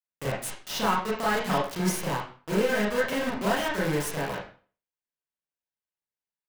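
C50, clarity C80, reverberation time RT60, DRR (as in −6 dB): 4.5 dB, 8.5 dB, 0.40 s, −7.0 dB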